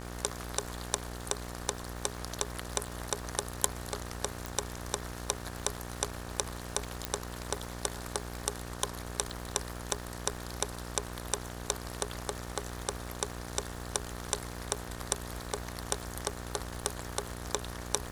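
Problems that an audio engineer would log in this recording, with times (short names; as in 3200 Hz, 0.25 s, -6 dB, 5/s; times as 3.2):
buzz 60 Hz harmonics 31 -42 dBFS
crackle 450/s -42 dBFS
4.46 pop
7.05 pop -13 dBFS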